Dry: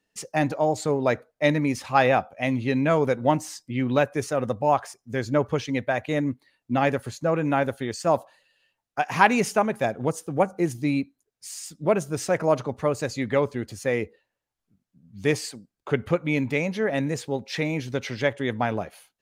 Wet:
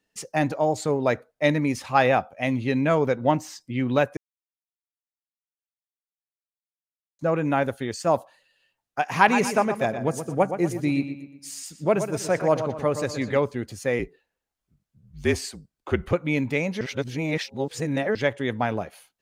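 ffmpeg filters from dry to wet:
-filter_complex "[0:a]asettb=1/sr,asplit=3[s0][s1][s2];[s0]atrim=end=2.954[s3];[s1]atrim=start=2.95:end=3.61,asetpts=PTS-STARTPTS,afade=t=in:d=0.004:c=qsin,afade=t=out:st=0.656:d=0.004:c=qsin,equalizer=f=9800:w=1.7:g=-10.5[s4];[s2]atrim=start=3.606[s5];[s3][s4]acrossfade=d=0.004:c1=hsin:c2=qsin[s6];[s6][s5]acrossfade=d=0.004:c1=qsin:c2=hsin,asettb=1/sr,asplit=3[s7][s8][s9];[s7]atrim=end=9.164[s10];[s8]atrim=start=9.16:end=13.37,asetpts=PTS-STARTPTS,afade=t=in:d=0.004:c=qsin,afade=t=out:st=4.206:d=0.004:c=qsin,asplit=2[s11][s12];[s12]adelay=121,lowpass=f=3900:p=1,volume=0.355,asplit=2[s13][s14];[s14]adelay=121,lowpass=f=3900:p=1,volume=0.44,asplit=2[s15][s16];[s16]adelay=121,lowpass=f=3900:p=1,volume=0.44,asplit=2[s17][s18];[s18]adelay=121,lowpass=f=3900:p=1,volume=0.44,asplit=2[s19][s20];[s20]adelay=121,lowpass=f=3900:p=1,volume=0.44[s21];[s11][s13][s15][s17][s19][s21]amix=inputs=6:normalize=0,atrim=end_sample=185661[s22];[s9]atrim=start=13.366[s23];[s10][s22]acrossfade=d=0.004:c1=hsin:c2=qsin[s24];[s24][s23]acrossfade=d=0.004:c1=qsin:c2=hsin,asettb=1/sr,asplit=3[s25][s26][s27];[s25]atrim=end=13.994[s28];[s26]atrim=start=13.99:end=16.13,asetpts=PTS-STARTPTS,afade=t=in:d=0.004:c=qsin,afade=t=out:st=2.136:d=0.004:c=qsin,afreqshift=-47[s29];[s27]atrim=start=16.126[s30];[s28][s29]acrossfade=d=0.004:c1=hsin:c2=qsin[s31];[s31][s30]acrossfade=d=0.004:c1=qsin:c2=hsin,asplit=5[s32][s33][s34][s35][s36];[s32]atrim=end=4.17,asetpts=PTS-STARTPTS,afade=t=out:st=4.166:d=0.004:c=hsin[s37];[s33]atrim=start=4.17:end=7.19,asetpts=PTS-STARTPTS,volume=0[s38];[s34]atrim=start=7.19:end=16.812,asetpts=PTS-STARTPTS,afade=t=in:d=0.004:c=hsin[s39];[s35]atrim=start=16.808:end=18.152,asetpts=PTS-STARTPTS,areverse[s40];[s36]atrim=start=18.148[s41];[s37][s38][s39]concat=n=3:v=0:a=1[s42];[s42][s40]acrossfade=d=0.004:c1=hsin:c2=hsin[s43];[s43][s41]acrossfade=d=0.004:c1=hsin:c2=hsin"

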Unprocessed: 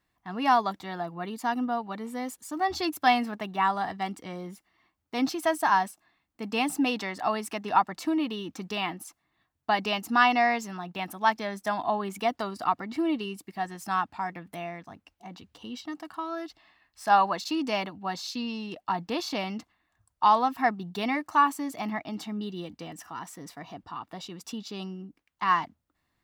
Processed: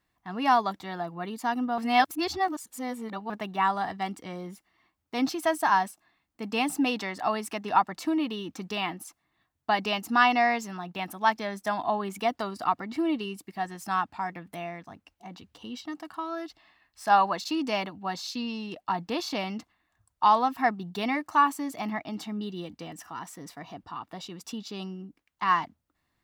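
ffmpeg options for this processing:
-filter_complex "[0:a]asplit=3[s0][s1][s2];[s0]atrim=end=1.782[s3];[s1]atrim=start=1.778:end=3.302,asetpts=PTS-STARTPTS,areverse[s4];[s2]atrim=start=3.298[s5];[s3][s4]acrossfade=d=0.004:c1=hsin:c2=hsin[s6];[s6][s5]acrossfade=d=0.004:c1=hsin:c2=hsin"

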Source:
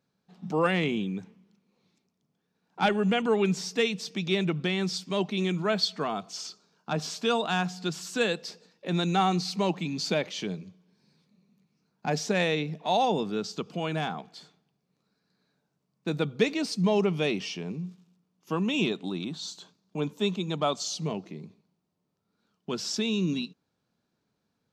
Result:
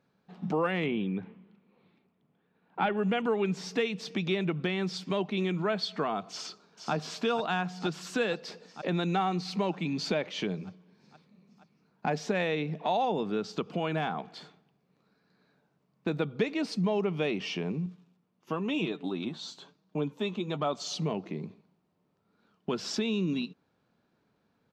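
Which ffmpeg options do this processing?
-filter_complex "[0:a]asettb=1/sr,asplit=3[s0][s1][s2];[s0]atrim=end=0.864[s3];[s1]atrim=start=0.86:end=2.97,asetpts=PTS-STARTPTS,afade=t=in:d=0.004:c=qsin,afade=t=out:st=2.106:d=0.004:c=qsin,lowpass=f=3700:w=0.5412,lowpass=f=3700:w=1.3066[s4];[s2]atrim=start=2.966[s5];[s3][s4]acrossfade=d=0.004:c1=hsin:c2=qsin[s6];[s6][s5]acrossfade=d=0.004:c1=qsin:c2=hsin,asplit=2[s7][s8];[s8]afade=t=in:st=6.3:d=0.01,afade=t=out:st=6.93:d=0.01,aecho=0:1:470|940|1410|1880|2350|2820|3290|3760|4230|4700|5170:0.421697|0.295188|0.206631|0.144642|0.101249|0.0708745|0.0496122|0.0347285|0.02431|0.017017|0.0119119[s9];[s7][s9]amix=inputs=2:normalize=0,asettb=1/sr,asplit=3[s10][s11][s12];[s10]atrim=end=17.864[s13];[s11]atrim=start=17.86:end=20.73,asetpts=PTS-STARTPTS,afade=t=in:d=0.004:c=qsin,afade=t=out:st=2.866:d=0.004:c=qsin,flanger=delay=6.1:depth=2.7:regen=43:speed=1:shape=triangular[s14];[s12]atrim=start=20.726[s15];[s13][s14]acrossfade=d=0.004:c1=hsin:c2=qsin[s16];[s16][s15]acrossfade=d=0.004:c1=qsin:c2=hsin,bass=f=250:g=-3,treble=f=4000:g=-13,acompressor=threshold=0.0141:ratio=2.5,volume=2.24"

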